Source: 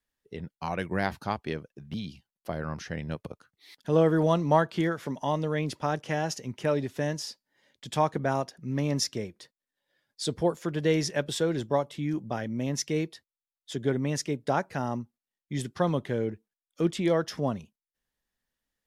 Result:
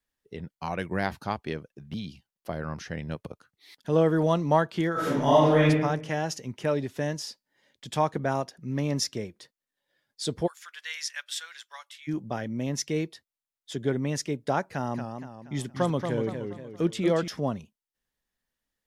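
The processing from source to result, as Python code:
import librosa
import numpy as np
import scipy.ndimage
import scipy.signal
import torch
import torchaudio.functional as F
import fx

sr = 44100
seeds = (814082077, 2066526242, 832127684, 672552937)

y = fx.reverb_throw(x, sr, start_s=4.92, length_s=0.76, rt60_s=0.87, drr_db=-9.5)
y = fx.highpass(y, sr, hz=1400.0, slope=24, at=(10.46, 12.07), fade=0.02)
y = fx.echo_warbled(y, sr, ms=235, feedback_pct=42, rate_hz=2.8, cents=146, wet_db=-6.5, at=(14.71, 17.28))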